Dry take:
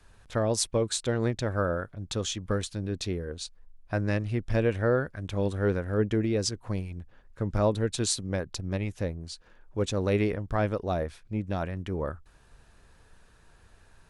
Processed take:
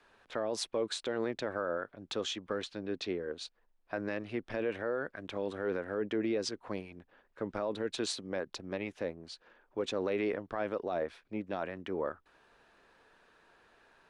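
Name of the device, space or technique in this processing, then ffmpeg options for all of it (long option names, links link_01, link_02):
DJ mixer with the lows and highs turned down: -filter_complex "[0:a]acrossover=split=240 4300:gain=0.0708 1 0.178[link_01][link_02][link_03];[link_01][link_02][link_03]amix=inputs=3:normalize=0,alimiter=limit=-24dB:level=0:latency=1:release=36,asettb=1/sr,asplit=3[link_04][link_05][link_06];[link_04]atrim=end=2.584[link_07];[link_05]atrim=start=2.58:end=3.24,asetpts=PTS-STARTPTS,afade=type=in:duration=0.004:curve=qsin,afade=type=out:start_time=0.656:duration=0.004:curve=qsin,lowpass=6800[link_08];[link_06]atrim=start=3.236[link_09];[link_07][link_08]acrossfade=duration=0.004:curve1=hsin:curve2=qsin[link_10];[link_10][link_09]acrossfade=duration=0.004:curve1=qsin:curve2=hsin"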